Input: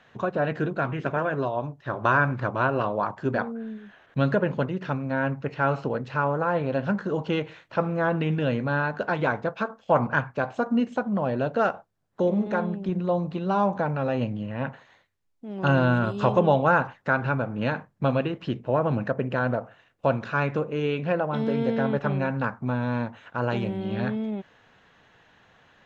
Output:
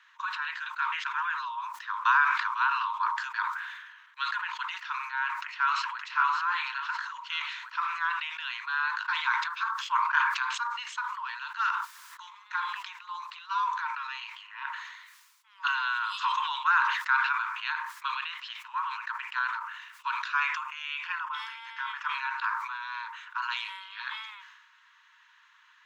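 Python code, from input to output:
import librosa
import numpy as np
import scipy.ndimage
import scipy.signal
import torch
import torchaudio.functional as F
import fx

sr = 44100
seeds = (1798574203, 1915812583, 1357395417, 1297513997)

y = fx.echo_throw(x, sr, start_s=5.26, length_s=0.77, ms=570, feedback_pct=35, wet_db=-2.5)
y = fx.notch(y, sr, hz=4000.0, q=5.1, at=(20.35, 22.15))
y = scipy.signal.sosfilt(scipy.signal.cheby1(10, 1.0, 920.0, 'highpass', fs=sr, output='sos'), y)
y = fx.dynamic_eq(y, sr, hz=3700.0, q=1.7, threshold_db=-51.0, ratio=4.0, max_db=6)
y = fx.sustainer(y, sr, db_per_s=44.0)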